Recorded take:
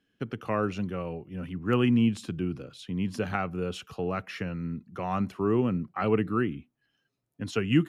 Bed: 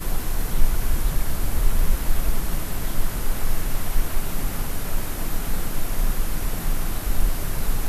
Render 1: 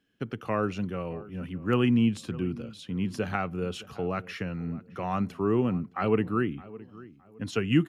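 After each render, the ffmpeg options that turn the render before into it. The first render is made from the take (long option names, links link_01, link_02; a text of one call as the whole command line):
ffmpeg -i in.wav -filter_complex "[0:a]asplit=2[link_01][link_02];[link_02]adelay=615,lowpass=frequency=1800:poles=1,volume=-19dB,asplit=2[link_03][link_04];[link_04]adelay=615,lowpass=frequency=1800:poles=1,volume=0.33,asplit=2[link_05][link_06];[link_06]adelay=615,lowpass=frequency=1800:poles=1,volume=0.33[link_07];[link_01][link_03][link_05][link_07]amix=inputs=4:normalize=0" out.wav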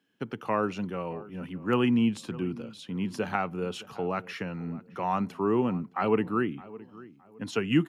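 ffmpeg -i in.wav -af "highpass=150,equalizer=frequency=910:width_type=o:width=0.35:gain=7.5" out.wav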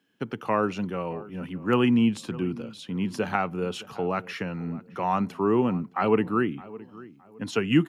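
ffmpeg -i in.wav -af "volume=3dB" out.wav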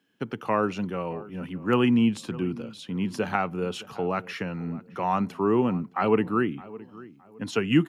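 ffmpeg -i in.wav -af anull out.wav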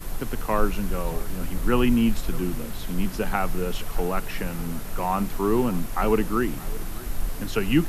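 ffmpeg -i in.wav -i bed.wav -filter_complex "[1:a]volume=-7dB[link_01];[0:a][link_01]amix=inputs=2:normalize=0" out.wav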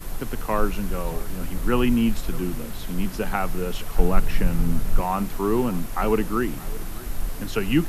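ffmpeg -i in.wav -filter_complex "[0:a]asettb=1/sr,asplit=3[link_01][link_02][link_03];[link_01]atrim=end=3.994[link_04];[link_02]atrim=start=3.99:end=5.01,asetpts=PTS-STARTPTS,afade=type=in:duration=0.004:curve=qsin,afade=type=out:start_time=1.016:duration=0.004:curve=qsin,lowshelf=frequency=200:gain=12[link_05];[link_03]atrim=start=5.006[link_06];[link_04][link_05]acrossfade=duration=0.004:curve1=hsin:curve2=qsin[link_07];[link_07][link_06]acrossfade=duration=0.004:curve1=qsin:curve2=hsin" out.wav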